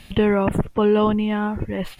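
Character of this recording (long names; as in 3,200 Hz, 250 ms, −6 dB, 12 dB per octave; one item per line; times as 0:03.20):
background noise floor −46 dBFS
spectral slope −6.0 dB per octave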